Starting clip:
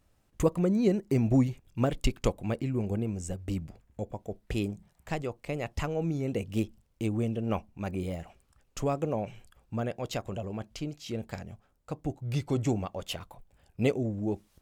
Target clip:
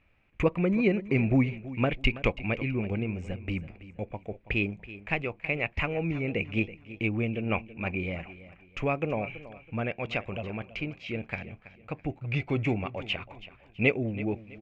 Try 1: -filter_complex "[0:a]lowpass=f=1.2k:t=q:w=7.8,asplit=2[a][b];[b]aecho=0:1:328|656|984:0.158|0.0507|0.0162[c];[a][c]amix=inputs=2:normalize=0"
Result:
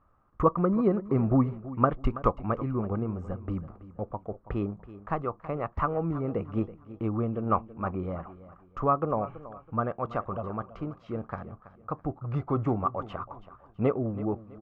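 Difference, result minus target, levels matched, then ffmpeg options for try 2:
2000 Hz band -14.5 dB
-filter_complex "[0:a]lowpass=f=2.4k:t=q:w=7.8,asplit=2[a][b];[b]aecho=0:1:328|656|984:0.158|0.0507|0.0162[c];[a][c]amix=inputs=2:normalize=0"

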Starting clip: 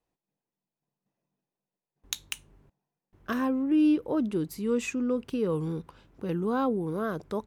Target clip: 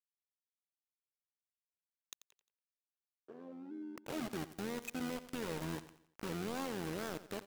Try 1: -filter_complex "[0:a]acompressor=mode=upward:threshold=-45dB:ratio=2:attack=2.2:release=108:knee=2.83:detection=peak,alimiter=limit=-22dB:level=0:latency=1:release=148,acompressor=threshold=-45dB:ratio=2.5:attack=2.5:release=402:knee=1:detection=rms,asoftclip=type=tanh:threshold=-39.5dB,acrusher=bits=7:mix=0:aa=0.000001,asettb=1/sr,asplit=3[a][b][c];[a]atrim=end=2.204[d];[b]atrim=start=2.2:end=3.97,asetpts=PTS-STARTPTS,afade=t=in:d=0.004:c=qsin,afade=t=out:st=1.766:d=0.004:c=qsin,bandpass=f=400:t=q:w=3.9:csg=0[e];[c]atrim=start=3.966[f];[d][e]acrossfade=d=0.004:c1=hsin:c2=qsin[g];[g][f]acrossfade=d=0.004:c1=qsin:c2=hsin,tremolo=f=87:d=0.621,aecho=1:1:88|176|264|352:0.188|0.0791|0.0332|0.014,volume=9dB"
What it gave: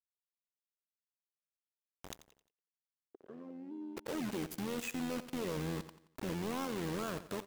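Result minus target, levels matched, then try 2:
compressor: peak gain reduction -6 dB
-filter_complex "[0:a]acompressor=mode=upward:threshold=-45dB:ratio=2:attack=2.2:release=108:knee=2.83:detection=peak,alimiter=limit=-22dB:level=0:latency=1:release=148,acompressor=threshold=-55dB:ratio=2.5:attack=2.5:release=402:knee=1:detection=rms,asoftclip=type=tanh:threshold=-39.5dB,acrusher=bits=7:mix=0:aa=0.000001,asettb=1/sr,asplit=3[a][b][c];[a]atrim=end=2.204[d];[b]atrim=start=2.2:end=3.97,asetpts=PTS-STARTPTS,afade=t=in:d=0.004:c=qsin,afade=t=out:st=1.766:d=0.004:c=qsin,bandpass=f=400:t=q:w=3.9:csg=0[e];[c]atrim=start=3.966[f];[d][e]acrossfade=d=0.004:c1=hsin:c2=qsin[g];[g][f]acrossfade=d=0.004:c1=qsin:c2=hsin,tremolo=f=87:d=0.621,aecho=1:1:88|176|264|352:0.188|0.0791|0.0332|0.014,volume=9dB"

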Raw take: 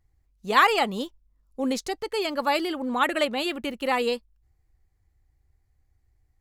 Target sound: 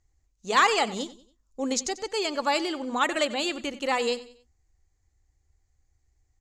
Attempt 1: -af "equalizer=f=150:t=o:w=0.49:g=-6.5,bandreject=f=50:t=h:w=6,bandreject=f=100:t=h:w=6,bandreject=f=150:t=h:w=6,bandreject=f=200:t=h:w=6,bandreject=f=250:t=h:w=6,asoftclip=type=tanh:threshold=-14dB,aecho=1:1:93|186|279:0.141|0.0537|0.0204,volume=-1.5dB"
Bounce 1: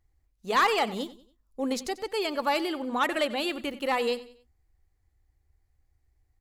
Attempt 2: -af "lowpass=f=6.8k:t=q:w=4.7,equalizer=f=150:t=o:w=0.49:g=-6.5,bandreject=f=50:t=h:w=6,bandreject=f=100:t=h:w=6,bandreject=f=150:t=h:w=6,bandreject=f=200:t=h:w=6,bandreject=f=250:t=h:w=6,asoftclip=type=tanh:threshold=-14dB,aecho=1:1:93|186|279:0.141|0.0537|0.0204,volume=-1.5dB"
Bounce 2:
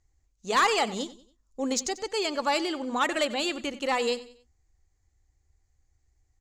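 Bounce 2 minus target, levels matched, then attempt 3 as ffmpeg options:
soft clip: distortion +10 dB
-af "lowpass=f=6.8k:t=q:w=4.7,equalizer=f=150:t=o:w=0.49:g=-6.5,bandreject=f=50:t=h:w=6,bandreject=f=100:t=h:w=6,bandreject=f=150:t=h:w=6,bandreject=f=200:t=h:w=6,bandreject=f=250:t=h:w=6,asoftclip=type=tanh:threshold=-6.5dB,aecho=1:1:93|186|279:0.141|0.0537|0.0204,volume=-1.5dB"

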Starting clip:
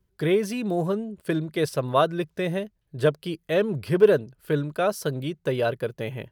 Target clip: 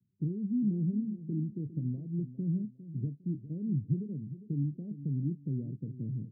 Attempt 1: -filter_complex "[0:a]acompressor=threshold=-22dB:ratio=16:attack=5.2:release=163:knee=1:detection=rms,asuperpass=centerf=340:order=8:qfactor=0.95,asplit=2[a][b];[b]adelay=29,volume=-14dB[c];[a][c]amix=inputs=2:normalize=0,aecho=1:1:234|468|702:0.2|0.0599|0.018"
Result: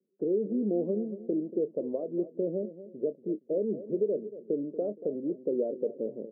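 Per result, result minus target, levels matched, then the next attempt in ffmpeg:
125 Hz band -17.0 dB; echo 0.171 s early
-filter_complex "[0:a]acompressor=threshold=-22dB:ratio=16:attack=5.2:release=163:knee=1:detection=rms,asuperpass=centerf=170:order=8:qfactor=0.95,asplit=2[a][b];[b]adelay=29,volume=-14dB[c];[a][c]amix=inputs=2:normalize=0,aecho=1:1:234|468|702:0.2|0.0599|0.018"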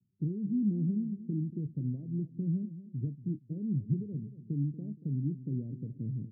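echo 0.171 s early
-filter_complex "[0:a]acompressor=threshold=-22dB:ratio=16:attack=5.2:release=163:knee=1:detection=rms,asuperpass=centerf=170:order=8:qfactor=0.95,asplit=2[a][b];[b]adelay=29,volume=-14dB[c];[a][c]amix=inputs=2:normalize=0,aecho=1:1:405|810|1215:0.2|0.0599|0.018"

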